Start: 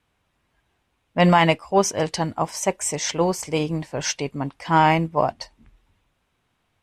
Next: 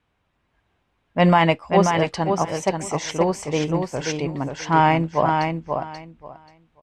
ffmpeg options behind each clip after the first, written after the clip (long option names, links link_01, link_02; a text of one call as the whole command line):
ffmpeg -i in.wav -af "aemphasis=mode=reproduction:type=50fm,aecho=1:1:534|1068|1602:0.562|0.101|0.0182" out.wav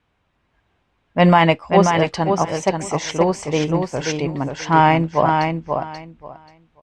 ffmpeg -i in.wav -af "lowpass=8300,volume=3dB" out.wav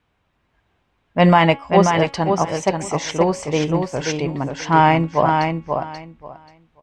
ffmpeg -i in.wav -af "bandreject=frequency=277.4:width_type=h:width=4,bandreject=frequency=554.8:width_type=h:width=4,bandreject=frequency=832.2:width_type=h:width=4,bandreject=frequency=1109.6:width_type=h:width=4,bandreject=frequency=1387:width_type=h:width=4,bandreject=frequency=1664.4:width_type=h:width=4,bandreject=frequency=1941.8:width_type=h:width=4,bandreject=frequency=2219.2:width_type=h:width=4,bandreject=frequency=2496.6:width_type=h:width=4,bandreject=frequency=2774:width_type=h:width=4,bandreject=frequency=3051.4:width_type=h:width=4,bandreject=frequency=3328.8:width_type=h:width=4,bandreject=frequency=3606.2:width_type=h:width=4" out.wav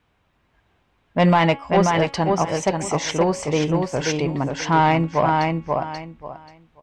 ffmpeg -i in.wav -filter_complex "[0:a]asplit=2[link_01][link_02];[link_02]acompressor=threshold=-22dB:ratio=6,volume=-2dB[link_03];[link_01][link_03]amix=inputs=2:normalize=0,asoftclip=type=tanh:threshold=-5dB,volume=-3dB" out.wav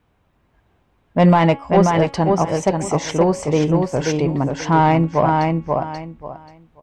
ffmpeg -i in.wav -af "equalizer=frequency=3200:width=0.38:gain=-7.5,volume=4.5dB" out.wav